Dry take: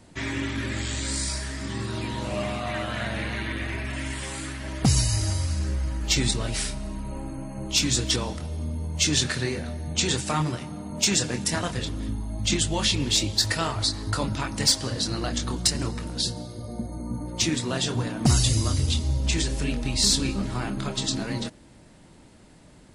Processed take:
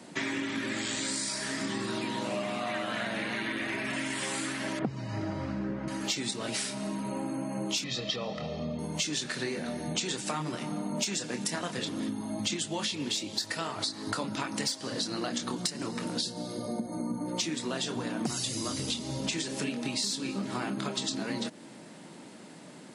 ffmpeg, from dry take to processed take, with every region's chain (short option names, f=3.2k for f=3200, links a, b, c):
-filter_complex "[0:a]asettb=1/sr,asplit=3[a][b][c];[a]atrim=end=4.794[d];[b]atrim=start=4.79:end=5.88,asetpts=PTS-STARTPTS,afade=t=in:d=0.004:c=qsin,afade=t=out:st=1.086:d=0.004:c=qsin,lowpass=1.6k,equalizer=f=130:t=o:w=2.7:g=4.5[e];[c]atrim=start=5.876[f];[d][e]acrossfade=d=0.004:c1=hsin:c2=qsin[g];[g][f]acrossfade=d=0.004:c1=qsin:c2=hsin,asettb=1/sr,asplit=3[h][i][j];[h]atrim=end=7.844[k];[i]atrim=start=7.84:end=8.79,asetpts=PTS-STARTPTS,afade=t=in:d=0.004:c=qsin,afade=t=out:st=0.946:d=0.004:c=qsin,lowpass=f=4.6k:w=0.5412,lowpass=f=4.6k:w=1.3066,equalizer=f=1.5k:w=7.3:g=-12.5,aecho=1:1:1.6:0.68,atrim=end_sample=41895[l];[j]atrim=start=8.786[m];[k][l]acrossfade=d=0.004:c1=hsin:c2=qsin[n];[n][m]acrossfade=d=0.004:c1=qsin:c2=hsin,highpass=f=170:w=0.5412,highpass=f=170:w=1.3066,highshelf=f=12k:g=-3.5,acompressor=threshold=-35dB:ratio=10,volume=5.5dB"